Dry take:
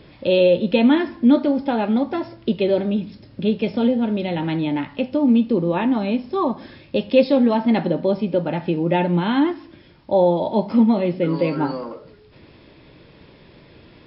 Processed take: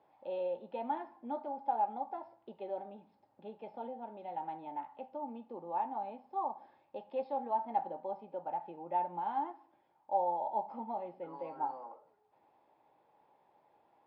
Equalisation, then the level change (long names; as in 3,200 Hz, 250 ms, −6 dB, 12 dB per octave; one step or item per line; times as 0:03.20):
resonant band-pass 820 Hz, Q 10
−2.0 dB